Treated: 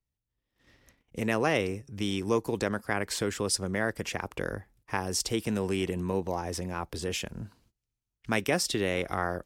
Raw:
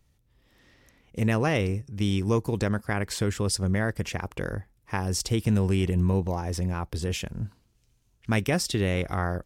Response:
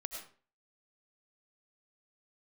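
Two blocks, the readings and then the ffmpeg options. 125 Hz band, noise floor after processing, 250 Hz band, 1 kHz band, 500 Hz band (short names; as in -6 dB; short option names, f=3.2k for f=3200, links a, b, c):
-10.5 dB, under -85 dBFS, -4.5 dB, 0.0 dB, -0.5 dB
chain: -filter_complex "[0:a]agate=range=-21dB:threshold=-58dB:ratio=16:detection=peak,acrossover=split=230|2300[a][b][c];[a]acompressor=threshold=-41dB:ratio=4[d];[d][b][c]amix=inputs=3:normalize=0"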